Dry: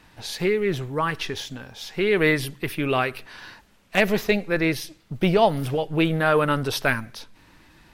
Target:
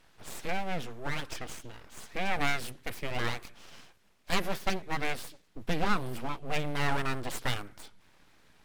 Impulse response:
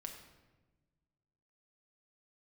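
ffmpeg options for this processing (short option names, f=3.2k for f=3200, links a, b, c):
-af "asetrate=40517,aresample=44100,aeval=exprs='abs(val(0))':c=same,volume=-7dB"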